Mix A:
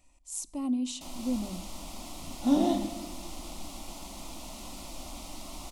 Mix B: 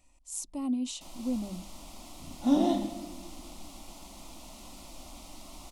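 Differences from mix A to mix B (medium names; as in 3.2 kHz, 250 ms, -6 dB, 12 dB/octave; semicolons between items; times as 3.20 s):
speech: send off; first sound -5.0 dB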